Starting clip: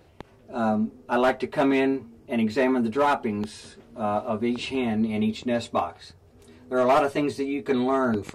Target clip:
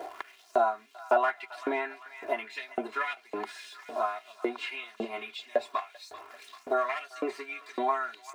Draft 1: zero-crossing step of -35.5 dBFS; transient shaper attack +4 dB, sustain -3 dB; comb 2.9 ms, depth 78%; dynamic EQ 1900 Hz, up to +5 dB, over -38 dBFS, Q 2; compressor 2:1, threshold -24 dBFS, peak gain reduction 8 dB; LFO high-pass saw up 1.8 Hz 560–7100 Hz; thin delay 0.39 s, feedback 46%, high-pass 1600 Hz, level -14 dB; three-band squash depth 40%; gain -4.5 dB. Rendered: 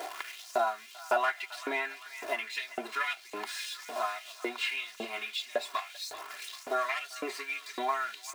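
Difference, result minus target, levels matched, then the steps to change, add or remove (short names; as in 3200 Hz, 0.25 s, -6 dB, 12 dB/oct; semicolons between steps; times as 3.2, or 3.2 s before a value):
zero-crossing step: distortion +8 dB; 2000 Hz band +4.0 dB
change: zero-crossing step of -44 dBFS; add after compressor: tilt shelf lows +7.5 dB, about 1500 Hz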